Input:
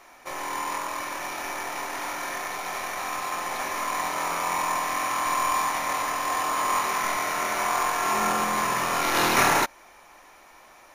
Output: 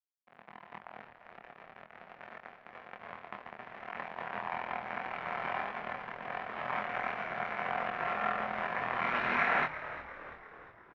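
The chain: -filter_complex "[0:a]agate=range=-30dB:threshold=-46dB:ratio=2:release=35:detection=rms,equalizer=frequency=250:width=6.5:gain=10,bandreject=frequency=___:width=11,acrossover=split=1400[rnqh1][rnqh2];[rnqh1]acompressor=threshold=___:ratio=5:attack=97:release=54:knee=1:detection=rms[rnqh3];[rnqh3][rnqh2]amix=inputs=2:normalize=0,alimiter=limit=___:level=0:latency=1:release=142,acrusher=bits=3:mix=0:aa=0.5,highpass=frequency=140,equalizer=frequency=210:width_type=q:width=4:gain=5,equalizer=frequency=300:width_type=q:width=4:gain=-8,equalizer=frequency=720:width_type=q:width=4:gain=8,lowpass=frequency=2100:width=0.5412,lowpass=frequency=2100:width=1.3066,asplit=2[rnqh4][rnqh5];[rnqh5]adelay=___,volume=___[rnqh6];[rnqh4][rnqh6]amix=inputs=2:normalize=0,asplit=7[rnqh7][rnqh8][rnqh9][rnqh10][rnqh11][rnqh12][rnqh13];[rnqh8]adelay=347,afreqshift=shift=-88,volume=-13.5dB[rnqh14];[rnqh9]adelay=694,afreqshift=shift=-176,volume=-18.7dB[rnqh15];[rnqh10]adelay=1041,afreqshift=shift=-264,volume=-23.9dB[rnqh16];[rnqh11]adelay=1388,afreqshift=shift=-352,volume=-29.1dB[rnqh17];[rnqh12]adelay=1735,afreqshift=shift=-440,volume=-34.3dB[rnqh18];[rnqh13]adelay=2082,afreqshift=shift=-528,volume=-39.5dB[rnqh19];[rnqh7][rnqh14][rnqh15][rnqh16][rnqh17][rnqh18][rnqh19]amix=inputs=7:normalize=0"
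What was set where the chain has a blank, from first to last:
870, -43dB, -13.5dB, 25, -4dB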